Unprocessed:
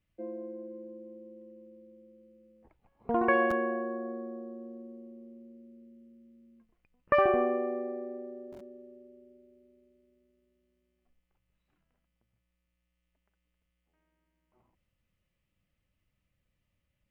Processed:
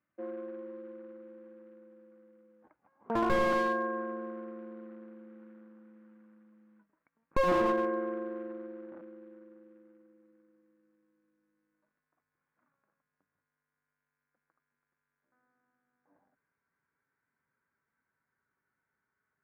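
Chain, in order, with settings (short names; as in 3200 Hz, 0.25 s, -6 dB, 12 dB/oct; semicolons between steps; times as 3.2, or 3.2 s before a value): speed glide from 102% -> 74%; short-mantissa float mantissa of 2-bit; speaker cabinet 240–2000 Hz, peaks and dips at 280 Hz +4 dB, 430 Hz -5 dB, 630 Hz +4 dB, 1100 Hz +6 dB, 1500 Hz +8 dB; notch 670 Hz, Q 12; slew limiter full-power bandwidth 44 Hz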